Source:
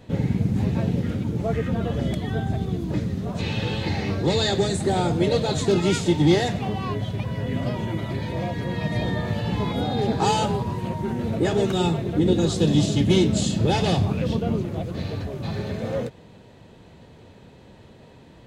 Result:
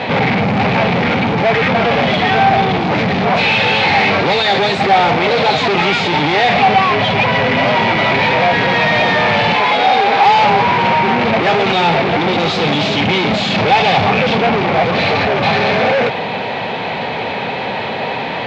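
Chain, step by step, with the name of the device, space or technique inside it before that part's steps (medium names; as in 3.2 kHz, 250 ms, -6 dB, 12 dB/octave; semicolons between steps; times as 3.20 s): overdrive pedal into a guitar cabinet (overdrive pedal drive 42 dB, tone 4.5 kHz, clips at -6.5 dBFS; cabinet simulation 100–4400 Hz, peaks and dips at 330 Hz -7 dB, 790 Hz +8 dB, 2.3 kHz +8 dB); 9.53–10.26 s: tone controls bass -12 dB, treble -1 dB; trim -1 dB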